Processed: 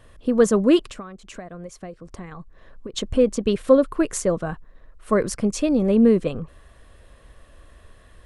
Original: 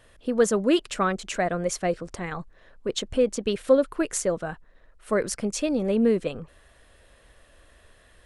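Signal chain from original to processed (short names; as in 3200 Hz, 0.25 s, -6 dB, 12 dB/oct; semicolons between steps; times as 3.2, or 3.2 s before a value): bell 1100 Hz +7 dB 0.23 oct; 0.87–2.94 compressor 10:1, threshold -38 dBFS, peak gain reduction 21 dB; low shelf 390 Hz +9 dB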